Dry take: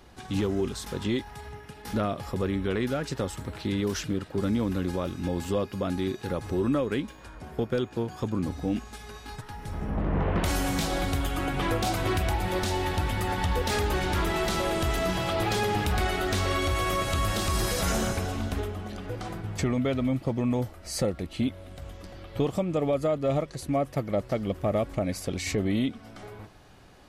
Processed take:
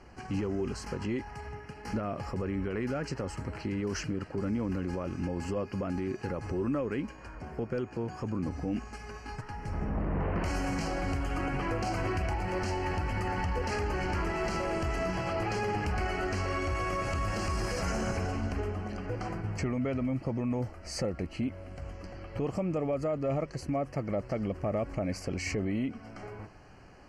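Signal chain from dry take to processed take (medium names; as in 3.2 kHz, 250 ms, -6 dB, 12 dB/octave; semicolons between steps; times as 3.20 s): low-pass 5.6 kHz 12 dB/octave; peak limiter -23.5 dBFS, peak gain reduction 9 dB; Butterworth band-stop 3.6 kHz, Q 2.4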